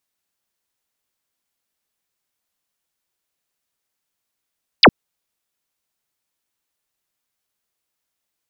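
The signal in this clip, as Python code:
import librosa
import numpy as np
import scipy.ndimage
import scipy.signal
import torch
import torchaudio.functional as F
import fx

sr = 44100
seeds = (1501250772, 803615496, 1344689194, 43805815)

y = fx.laser_zap(sr, level_db=-4.0, start_hz=5500.0, end_hz=140.0, length_s=0.06, wave='sine')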